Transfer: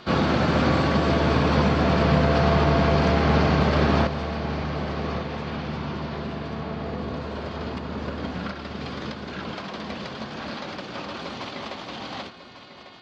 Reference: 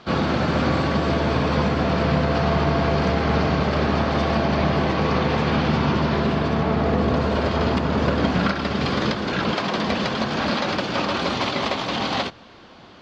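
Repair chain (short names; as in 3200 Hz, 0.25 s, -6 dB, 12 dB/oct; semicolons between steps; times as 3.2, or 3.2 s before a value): clip repair -9 dBFS; de-hum 361.2 Hz, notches 13; inverse comb 1.147 s -12 dB; gain correction +11 dB, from 4.07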